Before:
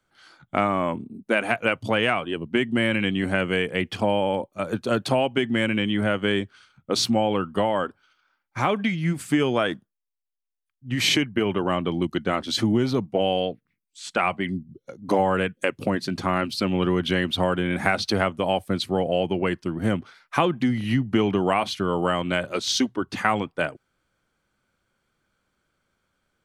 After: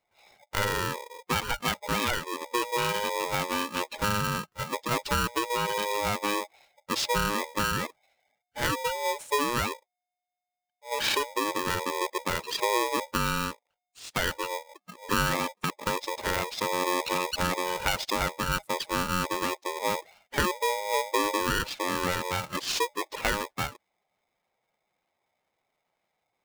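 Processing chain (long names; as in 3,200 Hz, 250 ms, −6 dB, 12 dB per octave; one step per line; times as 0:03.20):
gate on every frequency bin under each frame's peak −15 dB strong
ring modulator with a square carrier 720 Hz
level −5 dB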